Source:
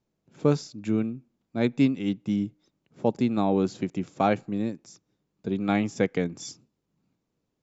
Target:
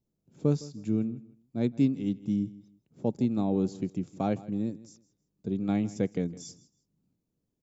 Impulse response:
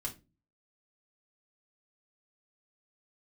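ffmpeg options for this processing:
-filter_complex "[0:a]equalizer=frequency=1700:width=0.35:gain=-14,asplit=2[link_01][link_02];[link_02]aecho=0:1:160|320:0.112|0.0269[link_03];[link_01][link_03]amix=inputs=2:normalize=0"

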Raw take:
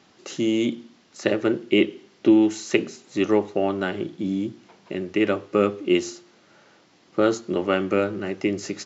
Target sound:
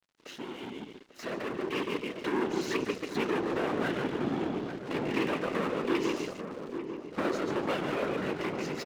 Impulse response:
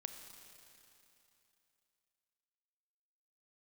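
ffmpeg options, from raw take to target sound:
-filter_complex "[0:a]asplit=2[link_01][link_02];[link_02]aecho=0:1:143|286|429:0.422|0.105|0.0264[link_03];[link_01][link_03]amix=inputs=2:normalize=0,acompressor=threshold=-29dB:ratio=2.5,lowshelf=frequency=210:gain=8.5,asoftclip=type=tanh:threshold=-31dB,afftfilt=real='hypot(re,im)*cos(2*PI*random(0))':imag='hypot(re,im)*sin(2*PI*random(1))':win_size=512:overlap=0.75,highpass=150,lowpass=2600,tiltshelf=frequency=1400:gain=-6,aeval=exprs='sgn(val(0))*max(abs(val(0))-0.00119,0)':channel_layout=same,dynaudnorm=framelen=600:gausssize=5:maxgain=11dB,asplit=2[link_04][link_05];[link_05]adelay=844,lowpass=frequency=1000:poles=1,volume=-7.5dB,asplit=2[link_06][link_07];[link_07]adelay=844,lowpass=frequency=1000:poles=1,volume=0.46,asplit=2[link_08][link_09];[link_09]adelay=844,lowpass=frequency=1000:poles=1,volume=0.46,asplit=2[link_10][link_11];[link_11]adelay=844,lowpass=frequency=1000:poles=1,volume=0.46,asplit=2[link_12][link_13];[link_13]adelay=844,lowpass=frequency=1000:poles=1,volume=0.46[link_14];[link_04][link_06][link_08][link_10][link_12][link_14]amix=inputs=6:normalize=0,volume=5dB"

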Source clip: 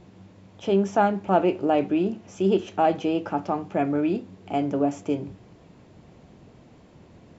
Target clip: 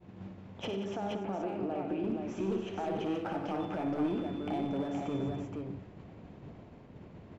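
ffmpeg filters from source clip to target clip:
ffmpeg -i in.wav -filter_complex "[0:a]bass=frequency=250:gain=1,treble=frequency=4000:gain=-13,agate=range=-33dB:threshold=-42dB:ratio=3:detection=peak,acompressor=threshold=-39dB:ratio=2,alimiter=level_in=8dB:limit=-24dB:level=0:latency=1:release=63,volume=-8dB,asettb=1/sr,asplit=3[link_01][link_02][link_03];[link_01]atrim=end=0.674[link_04];[link_02]atrim=start=0.67:end=2.04,asetpts=PTS-STARTPTS,afade=type=in:duration=0.004:curve=qsin,afade=type=out:start_time=1.366:duration=0.004:curve=qsin,acrossover=split=250|1000[link_05][link_06][link_07];[link_05]acompressor=threshold=-49dB:ratio=4[link_08];[link_06]acompressor=threshold=-41dB:ratio=4[link_09];[link_07]acompressor=threshold=-56dB:ratio=4[link_10];[link_08][link_09][link_10]amix=inputs=3:normalize=0[link_11];[link_03]atrim=start=2.036[link_12];[link_04][link_11]acrossfade=duration=0.004:curve1=hsin:curve2=qsin[link_13];[link_13][link_12]acrossfade=duration=0.004:curve1=qsin:curve2=hsin,asoftclip=type=hard:threshold=-35.5dB,asettb=1/sr,asplit=3[link_14][link_15][link_16];[link_14]atrim=end=3.604[link_17];[link_15]atrim=start=3.6:end=4.93,asetpts=PTS-STARTPTS,afade=type=in:duration=0.004:curve=qsin,afade=type=out:start_time=1.326:duration=0.004:curve=qsin,aeval=exprs='val(0)+0.001*sin(2*PI*3500*n/s)':channel_layout=same[link_18];[link_16]atrim=start=4.926[link_19];[link_17][link_18]acrossfade=duration=0.004:curve1=hsin:curve2=qsin[link_20];[link_20][link_19]acrossfade=duration=0.004:curve1=qsin:curve2=hsin,aecho=1:1:57|95|145|181|286|472:0.398|0.355|0.168|0.282|0.316|0.596,volume=5.5dB" out.wav

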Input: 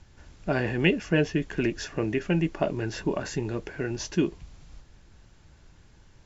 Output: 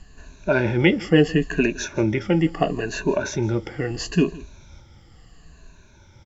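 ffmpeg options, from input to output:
ffmpeg -i in.wav -af "afftfilt=real='re*pow(10,15/40*sin(2*PI*(1.5*log(max(b,1)*sr/1024/100)/log(2)-(-0.74)*(pts-256)/sr)))':imag='im*pow(10,15/40*sin(2*PI*(1.5*log(max(b,1)*sr/1024/100)/log(2)-(-0.74)*(pts-256)/sr)))':win_size=1024:overlap=0.75,aecho=1:1:163:0.0891,volume=3.5dB" out.wav

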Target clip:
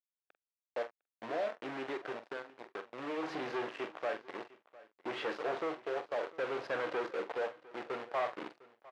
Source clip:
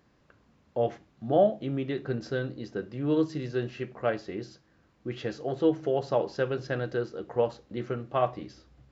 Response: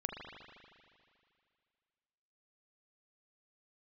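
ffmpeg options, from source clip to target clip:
-filter_complex "[0:a]asettb=1/sr,asplit=3[link_01][link_02][link_03];[link_01]atrim=end=0.824[link_04];[link_02]atrim=start=0.82:end=3.23,asetpts=PTS-STARTPTS,afade=type=in:duration=0.004:curve=qsin,afade=type=out:start_time=2.406:duration=0.004:curve=qsin,acompressor=threshold=-37dB:ratio=5[link_05];[link_03]atrim=start=3.226[link_06];[link_04][link_05]acrossfade=duration=0.004:curve1=hsin:curve2=qsin[link_07];[link_07][link_06]acrossfade=duration=0.004:curve1=qsin:curve2=hsin,alimiter=limit=-20dB:level=0:latency=1:release=486,tremolo=f=0.58:d=0.64,acrusher=bits=3:mode=log:mix=0:aa=0.000001,asoftclip=type=hard:threshold=-33.5dB,acrusher=bits=6:mix=0:aa=0.5,highpass=490,lowpass=2400,asplit=2[link_08][link_09];[link_09]adelay=45,volume=-11dB[link_10];[link_08][link_10]amix=inputs=2:normalize=0,aecho=1:1:704:0.0944,volume=7dB"

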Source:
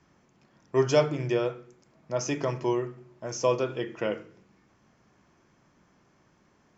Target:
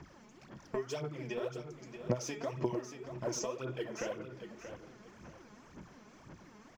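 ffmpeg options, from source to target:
ffmpeg -i in.wav -af "acompressor=threshold=-41dB:ratio=12,aphaser=in_gain=1:out_gain=1:delay=4.8:decay=0.72:speed=1.9:type=sinusoidal,aecho=1:1:631|1262|1893:0.316|0.0822|0.0214,volume=3.5dB" out.wav

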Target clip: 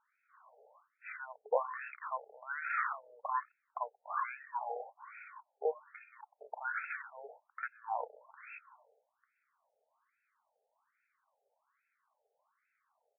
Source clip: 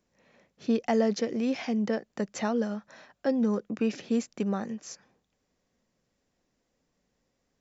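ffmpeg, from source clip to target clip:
ffmpeg -i in.wav -af "asetrate=25442,aresample=44100,afftfilt=real='re*between(b*sr/1024,590*pow(1900/590,0.5+0.5*sin(2*PI*1.2*pts/sr))/1.41,590*pow(1900/590,0.5+0.5*sin(2*PI*1.2*pts/sr))*1.41)':imag='im*between(b*sr/1024,590*pow(1900/590,0.5+0.5*sin(2*PI*1.2*pts/sr))/1.41,590*pow(1900/590,0.5+0.5*sin(2*PI*1.2*pts/sr))*1.41)':win_size=1024:overlap=0.75,volume=8.5dB" out.wav

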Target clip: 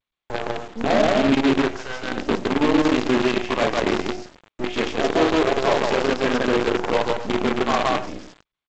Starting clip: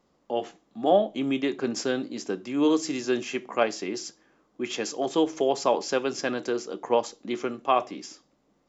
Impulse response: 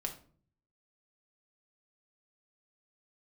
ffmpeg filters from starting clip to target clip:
-filter_complex "[0:a]asplit=2[link_01][link_02];[link_02]acompressor=threshold=-33dB:ratio=10,volume=-2dB[link_03];[link_01][link_03]amix=inputs=2:normalize=0,asplit=3[link_04][link_05][link_06];[link_04]afade=type=out:start_time=1.58:duration=0.02[link_07];[link_05]highpass=frequency=630:width=0.5412,highpass=frequency=630:width=1.3066,afade=type=in:start_time=1.58:duration=0.02,afade=type=out:start_time=2.02:duration=0.02[link_08];[link_06]afade=type=in:start_time=2.02:duration=0.02[link_09];[link_07][link_08][link_09]amix=inputs=3:normalize=0,asoftclip=type=tanh:threshold=-23.5dB,lowpass=3100,aecho=1:1:43.73|163.3|262.4:0.631|1|0.398,asplit=2[link_10][link_11];[1:a]atrim=start_sample=2205,lowpass=2500[link_12];[link_11][link_12]afir=irnorm=-1:irlink=0,volume=-6.5dB[link_13];[link_10][link_13]amix=inputs=2:normalize=0,dynaudnorm=framelen=150:gausssize=5:maxgain=3dB,acrusher=bits=4:dc=4:mix=0:aa=0.000001" -ar 16000 -c:a g722

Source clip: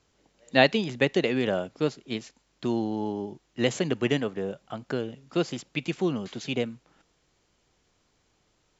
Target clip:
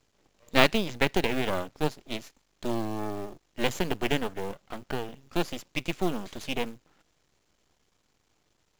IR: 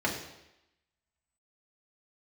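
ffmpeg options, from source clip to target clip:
-af "aeval=exprs='max(val(0),0)':channel_layout=same,acrusher=bits=5:mode=log:mix=0:aa=0.000001,volume=2dB"

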